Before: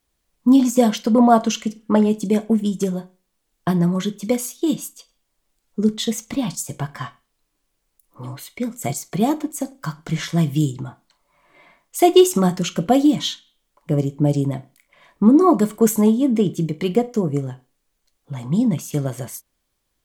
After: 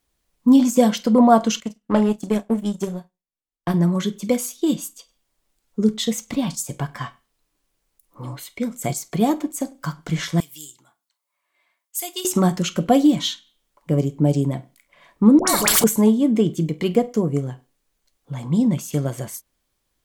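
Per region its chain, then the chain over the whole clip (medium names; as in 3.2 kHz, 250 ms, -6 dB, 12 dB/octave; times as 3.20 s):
1.60–3.74 s: doubling 34 ms -11 dB + power-law waveshaper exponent 1.4
10.40–12.25 s: differentiator + tape noise reduction on one side only decoder only
15.39–15.84 s: tone controls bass 0 dB, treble +7 dB + phase dispersion highs, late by 86 ms, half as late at 1.1 kHz + spectrum-flattening compressor 4:1
whole clip: none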